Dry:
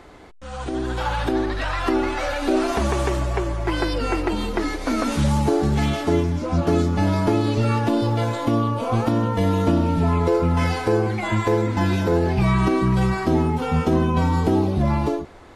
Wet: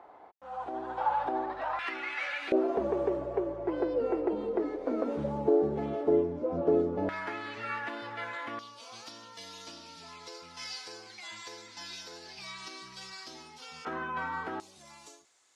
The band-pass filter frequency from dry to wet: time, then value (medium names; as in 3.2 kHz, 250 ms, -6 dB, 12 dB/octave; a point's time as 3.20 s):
band-pass filter, Q 2.8
810 Hz
from 1.79 s 2.2 kHz
from 2.52 s 470 Hz
from 7.09 s 1.8 kHz
from 8.59 s 5.1 kHz
from 13.85 s 1.5 kHz
from 14.60 s 7.2 kHz